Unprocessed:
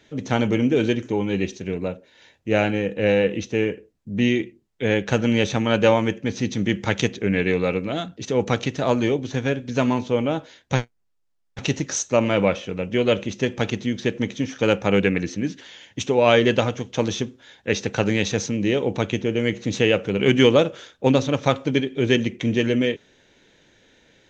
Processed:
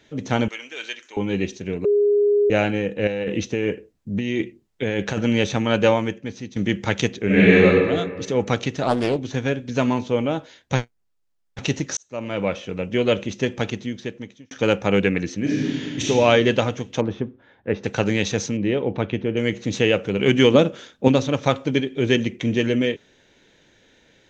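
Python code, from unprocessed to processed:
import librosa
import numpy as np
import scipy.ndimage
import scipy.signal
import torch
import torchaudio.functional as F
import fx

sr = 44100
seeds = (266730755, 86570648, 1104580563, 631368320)

y = fx.highpass(x, sr, hz=1400.0, slope=12, at=(0.48, 1.17))
y = fx.over_compress(y, sr, threshold_db=-23.0, ratio=-1.0, at=(3.07, 5.19))
y = fx.reverb_throw(y, sr, start_s=7.25, length_s=0.4, rt60_s=1.6, drr_db=-9.0)
y = fx.doppler_dist(y, sr, depth_ms=0.54, at=(8.83, 9.23))
y = fx.reverb_throw(y, sr, start_s=15.4, length_s=0.66, rt60_s=2.0, drr_db=-6.5)
y = fx.lowpass(y, sr, hz=1400.0, slope=12, at=(17.0, 17.83), fade=0.02)
y = fx.air_absorb(y, sr, metres=260.0, at=(18.57, 19.37))
y = fx.peak_eq(y, sr, hz=220.0, db=10.5, octaves=0.77, at=(20.54, 21.08))
y = fx.edit(y, sr, fx.bleep(start_s=1.85, length_s=0.65, hz=411.0, db=-14.0),
    fx.fade_out_to(start_s=5.84, length_s=0.72, floor_db=-14.5),
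    fx.fade_in_span(start_s=11.97, length_s=0.78),
    fx.fade_out_span(start_s=13.5, length_s=1.01), tone=tone)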